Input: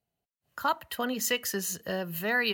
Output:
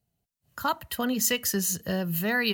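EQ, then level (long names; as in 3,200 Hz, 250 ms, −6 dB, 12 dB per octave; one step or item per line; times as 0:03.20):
bass and treble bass +11 dB, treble +6 dB
0.0 dB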